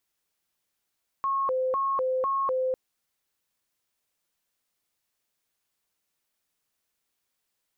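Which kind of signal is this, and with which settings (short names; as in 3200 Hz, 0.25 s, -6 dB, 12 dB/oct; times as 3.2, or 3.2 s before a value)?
siren hi-lo 516–1090 Hz 2/s sine -23.5 dBFS 1.50 s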